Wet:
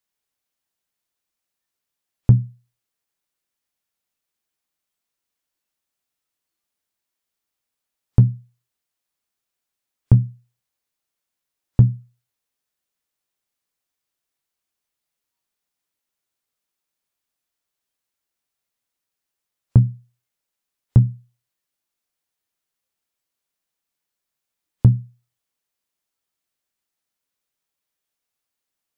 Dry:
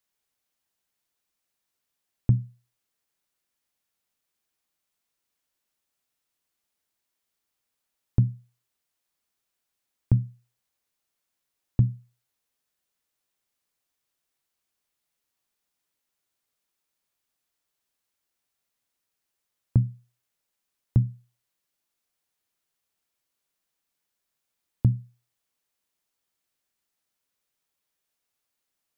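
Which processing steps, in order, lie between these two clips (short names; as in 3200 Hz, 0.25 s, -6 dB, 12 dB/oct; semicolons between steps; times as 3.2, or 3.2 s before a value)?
in parallel at -5.5 dB: overloaded stage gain 15 dB; on the sum: spectral noise reduction 10 dB; gain +5 dB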